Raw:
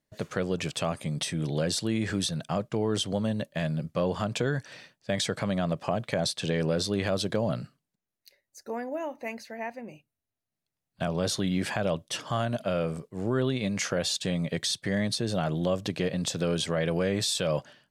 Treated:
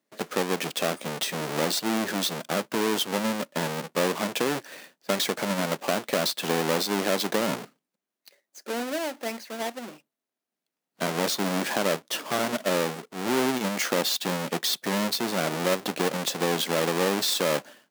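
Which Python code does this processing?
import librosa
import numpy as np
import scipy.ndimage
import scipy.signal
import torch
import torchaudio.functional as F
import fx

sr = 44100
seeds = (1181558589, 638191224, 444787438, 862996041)

y = fx.halfwave_hold(x, sr)
y = scipy.signal.sosfilt(scipy.signal.butter(4, 220.0, 'highpass', fs=sr, output='sos'), y)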